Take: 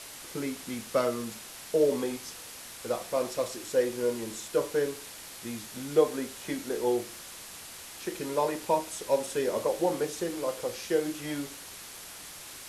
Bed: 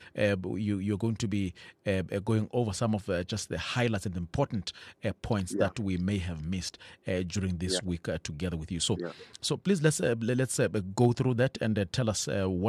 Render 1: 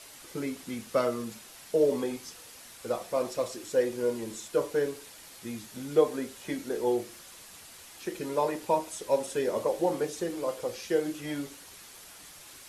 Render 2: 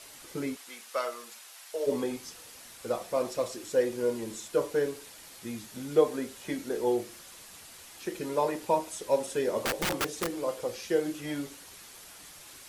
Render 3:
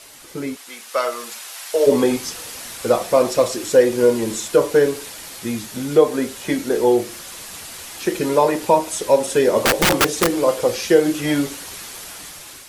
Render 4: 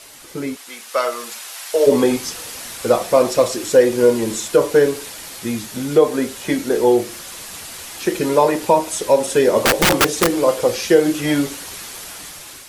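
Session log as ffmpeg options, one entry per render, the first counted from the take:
-af "afftdn=nr=6:nf=-45"
-filter_complex "[0:a]asplit=3[a][b][c];[a]afade=t=out:st=0.55:d=0.02[d];[b]highpass=780,afade=t=in:st=0.55:d=0.02,afade=t=out:st=1.86:d=0.02[e];[c]afade=t=in:st=1.86:d=0.02[f];[d][e][f]amix=inputs=3:normalize=0,asettb=1/sr,asplit=3[g][h][i];[g]atrim=end=9.624[j];[h]atrim=start=9.62:end=10.41,asetpts=PTS-STARTPTS,afade=t=in:d=0.004:c=qsin,afade=t=out:st=0.786:d=0.004:c=qsin,aeval=exprs='(mod(15.8*val(0)+1,2)-1)/15.8':c=same[k];[i]atrim=start=10.406[l];[j][k]acrossfade=d=0.004:c1=hsin:c2=qsin[m];[m][l]acrossfade=d=0.004:c1=qsin:c2=hsin"
-filter_complex "[0:a]asplit=2[a][b];[b]alimiter=limit=-21dB:level=0:latency=1:release=236,volume=0dB[c];[a][c]amix=inputs=2:normalize=0,dynaudnorm=f=420:g=5:m=11.5dB"
-af "volume=1.5dB,alimiter=limit=-2dB:level=0:latency=1"

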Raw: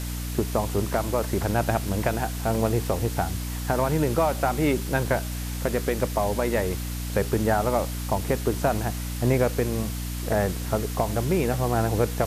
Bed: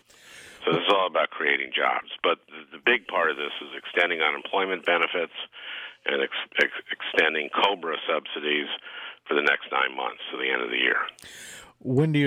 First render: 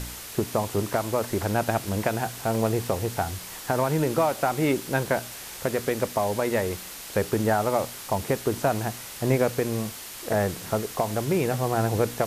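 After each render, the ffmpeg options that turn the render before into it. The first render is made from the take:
-af "bandreject=f=60:t=h:w=4,bandreject=f=120:t=h:w=4,bandreject=f=180:t=h:w=4,bandreject=f=240:t=h:w=4,bandreject=f=300:t=h:w=4"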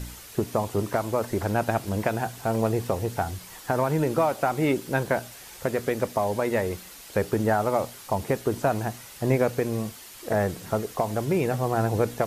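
-af "afftdn=nr=7:nf=-40"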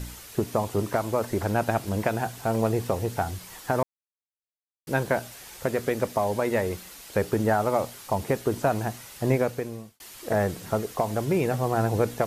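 -filter_complex "[0:a]asplit=4[a][b][c][d];[a]atrim=end=3.83,asetpts=PTS-STARTPTS,afade=t=out:st=3.826:d=0.004:c=hsin[e];[b]atrim=start=3.83:end=4.87,asetpts=PTS-STARTPTS,volume=0[f];[c]atrim=start=4.87:end=10,asetpts=PTS-STARTPTS,afade=t=in:d=0.004:c=hsin,afade=t=out:st=4.42:d=0.71[g];[d]atrim=start=10,asetpts=PTS-STARTPTS,afade=t=in:d=0.004:c=hsin[h];[e][f][g][h]concat=n=4:v=0:a=1"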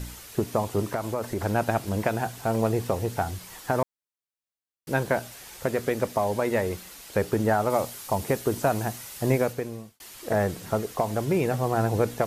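-filter_complex "[0:a]asettb=1/sr,asplit=3[a][b][c];[a]atrim=end=0.934[d];[b]atrim=start=0.93:end=1.42,asetpts=PTS-STARTPTS,afade=t=in:d=0.004:c=qsin,afade=t=out:st=0.486:d=0.004:c=qsin,acompressor=threshold=-26dB:ratio=2:attack=3.2:release=140:knee=1:detection=peak[e];[c]atrim=start=1.416[f];[d][e]acrossfade=d=0.004:c1=hsin:c2=qsin[g];[g][f]acrossfade=d=0.004:c1=qsin:c2=hsin,asettb=1/sr,asplit=3[h][i][j];[h]atrim=end=7.704[k];[i]atrim=start=7.7:end=9.53,asetpts=PTS-STARTPTS,afade=t=in:d=0.004:c=qsin,afade=t=out:st=1.826:d=0.004:c=qsin,highshelf=f=5.5k:g=6[l];[j]atrim=start=9.526[m];[k][l]acrossfade=d=0.004:c1=hsin:c2=qsin[n];[n][m]acrossfade=d=0.004:c1=qsin:c2=hsin"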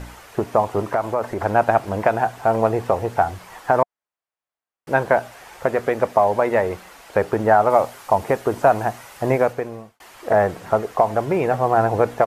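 -af "firequalizer=gain_entry='entry(190,0);entry(710,11);entry(3800,-3);entry(14000,-9)':delay=0.05:min_phase=1"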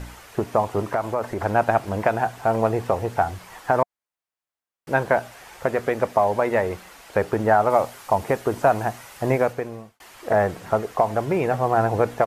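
-af "equalizer=f=700:w=0.49:g=-3"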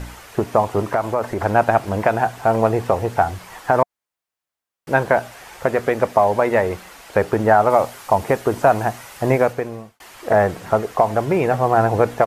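-af "volume=4dB,alimiter=limit=-2dB:level=0:latency=1"

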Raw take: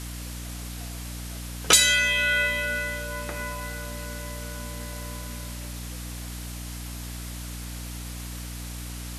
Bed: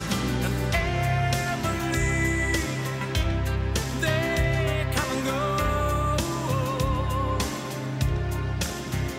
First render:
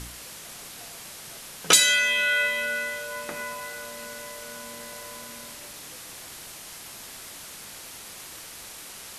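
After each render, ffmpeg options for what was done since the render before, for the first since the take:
-af "bandreject=f=60:t=h:w=4,bandreject=f=120:t=h:w=4,bandreject=f=180:t=h:w=4,bandreject=f=240:t=h:w=4,bandreject=f=300:t=h:w=4"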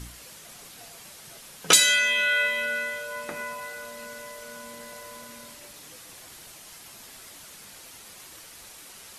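-af "afftdn=nr=6:nf=-43"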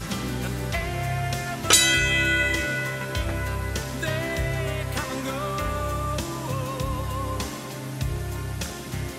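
-filter_complex "[1:a]volume=-3dB[a];[0:a][a]amix=inputs=2:normalize=0"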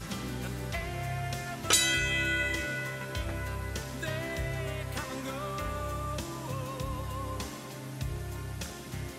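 -af "volume=-7.5dB"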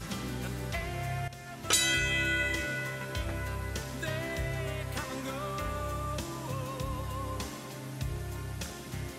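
-filter_complex "[0:a]asplit=2[a][b];[a]atrim=end=1.28,asetpts=PTS-STARTPTS,afade=t=out:st=1.276:d=0.004:c=hsin:silence=0.223872[c];[b]atrim=start=1.28,asetpts=PTS-STARTPTS,afade=t=in:d=0.63:silence=0.223872[d];[c][d]concat=n=2:v=0:a=1"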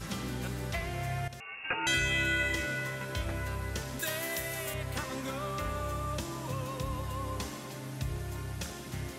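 -filter_complex "[0:a]asettb=1/sr,asplit=3[a][b][c];[a]atrim=end=1.404[d];[b]atrim=start=1.4:end=1.87,asetpts=PTS-STARTPTS,afade=t=in:d=0.004:c=qsin,afade=t=out:st=0.466:d=0.004:c=qsin,lowpass=f=2.5k:t=q:w=0.5098,lowpass=f=2.5k:t=q:w=0.6013,lowpass=f=2.5k:t=q:w=0.9,lowpass=f=2.5k:t=q:w=2.563,afreqshift=-2900[e];[c]atrim=start=1.866[f];[d][e]acrossfade=d=0.004:c1=hsin:c2=qsin[g];[g][f]acrossfade=d=0.004:c1=qsin:c2=hsin,asettb=1/sr,asplit=3[h][i][j];[h]atrim=end=3.994[k];[i]atrim=start=3.99:end=4.74,asetpts=PTS-STARTPTS,afade=t=in:d=0.004:c=qsin,afade=t=out:st=0.746:d=0.004:c=qsin,aemphasis=mode=production:type=bsi[l];[j]atrim=start=4.736[m];[k][l]acrossfade=d=0.004:c1=hsin:c2=qsin[n];[n][m]acrossfade=d=0.004:c1=qsin:c2=hsin"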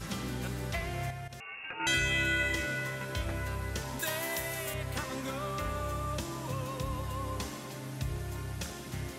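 -filter_complex "[0:a]asettb=1/sr,asplit=3[a][b][c];[a]atrim=end=1.104[d];[b]atrim=start=1.1:end=1.8,asetpts=PTS-STARTPTS,afade=t=in:d=0.004:c=qsin,afade=t=out:st=0.696:d=0.004:c=qsin,acompressor=threshold=-38dB:ratio=4:attack=3.2:release=140:knee=1:detection=peak[e];[c]atrim=start=1.796[f];[d][e]acrossfade=d=0.004:c1=hsin:c2=qsin[g];[g][f]acrossfade=d=0.004:c1=qsin:c2=hsin,asettb=1/sr,asplit=3[h][i][j];[h]atrim=end=3.844[k];[i]atrim=start=3.84:end=4.54,asetpts=PTS-STARTPTS,afade=t=in:d=0.004:c=qsin,afade=t=out:st=0.696:d=0.004:c=qsin,equalizer=f=900:t=o:w=0.21:g=12[l];[j]atrim=start=4.536[m];[k][l]acrossfade=d=0.004:c1=hsin:c2=qsin[n];[n][m]acrossfade=d=0.004:c1=qsin:c2=hsin"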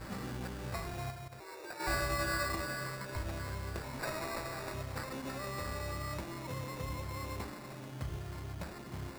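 -af "acrusher=samples=14:mix=1:aa=0.000001,flanger=delay=2.8:depth=9.5:regen=-75:speed=0.94:shape=sinusoidal"

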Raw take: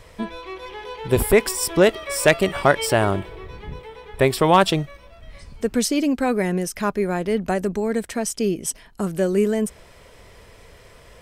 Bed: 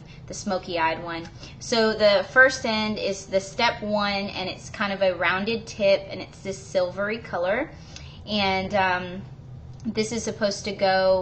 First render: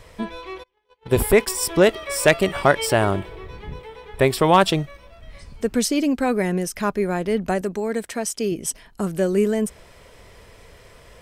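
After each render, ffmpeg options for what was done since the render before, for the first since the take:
-filter_complex "[0:a]asplit=3[a][b][c];[a]afade=t=out:st=0.62:d=0.02[d];[b]agate=range=-37dB:threshold=-30dB:ratio=16:release=100:detection=peak,afade=t=in:st=0.62:d=0.02,afade=t=out:st=1.54:d=0.02[e];[c]afade=t=in:st=1.54:d=0.02[f];[d][e][f]amix=inputs=3:normalize=0,asettb=1/sr,asplit=3[g][h][i];[g]atrim=end=7.614[j];[h]atrim=start=7.61:end=8.52,asetpts=PTS-STARTPTS,afade=t=in:d=0.004:c=qsin,afade=t=out:st=0.906:d=0.004:c=qsin,lowshelf=f=160:g=-10[k];[i]atrim=start=8.516[l];[j][k]acrossfade=d=0.004:c1=hsin:c2=qsin[m];[m][l]acrossfade=d=0.004:c1=qsin:c2=hsin"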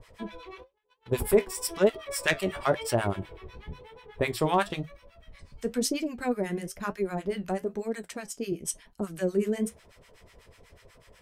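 -filter_complex "[0:a]acrossover=split=930[a][b];[a]aeval=exprs='val(0)*(1-1/2+1/2*cos(2*PI*8.1*n/s))':c=same[c];[b]aeval=exprs='val(0)*(1-1/2-1/2*cos(2*PI*8.1*n/s))':c=same[d];[c][d]amix=inputs=2:normalize=0,flanger=delay=7.6:depth=7.1:regen=-57:speed=1:shape=triangular"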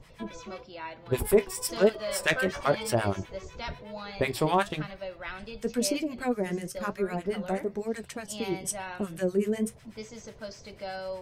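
-filter_complex "[1:a]volume=-16.5dB[a];[0:a][a]amix=inputs=2:normalize=0"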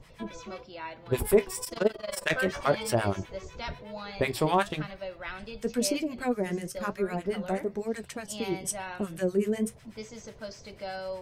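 -filter_complex "[0:a]asplit=3[a][b][c];[a]afade=t=out:st=1.63:d=0.02[d];[b]tremolo=f=22:d=0.889,afade=t=in:st=1.63:d=0.02,afade=t=out:st=2.29:d=0.02[e];[c]afade=t=in:st=2.29:d=0.02[f];[d][e][f]amix=inputs=3:normalize=0"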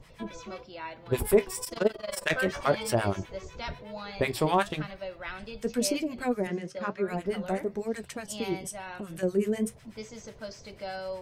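-filter_complex "[0:a]asettb=1/sr,asplit=3[a][b][c];[a]atrim=end=6.474[d];[b]atrim=start=6.47:end=7.08,asetpts=PTS-STARTPTS,afade=t=in:d=0.004:c=qsin,afade=t=out:st=0.606:d=0.004:c=qsin,highpass=140,lowpass=4.2k[e];[c]atrim=start=7.076[f];[d][e]acrossfade=d=0.004:c1=hsin:c2=qsin[g];[g][f]acrossfade=d=0.004:c1=qsin:c2=hsin,asettb=1/sr,asplit=3[h][i][j];[h]atrim=end=8.614[k];[i]atrim=start=8.61:end=9.23,asetpts=PTS-STARTPTS,afade=t=in:d=0.004:c=qsin,afade=t=out:st=0.616:d=0.004:c=qsin,acompressor=threshold=-35dB:ratio=3:attack=3.2:release=140:knee=1:detection=peak[l];[j]atrim=start=9.226[m];[k][l]acrossfade=d=0.004:c1=hsin:c2=qsin[n];[n][m]acrossfade=d=0.004:c1=qsin:c2=hsin"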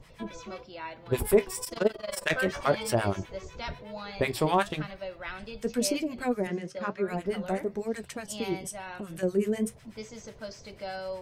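-af anull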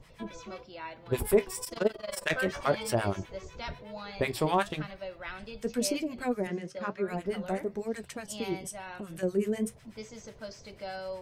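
-af "volume=-2dB"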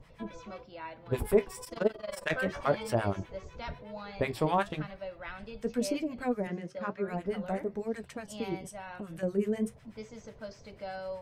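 -af "highshelf=f=3k:g=-9,bandreject=f=370:w=12"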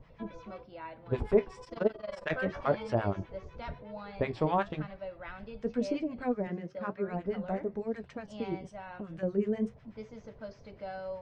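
-af "lowpass=f=6k:w=0.5412,lowpass=f=6k:w=1.3066,highshelf=f=2.5k:g=-8.5"

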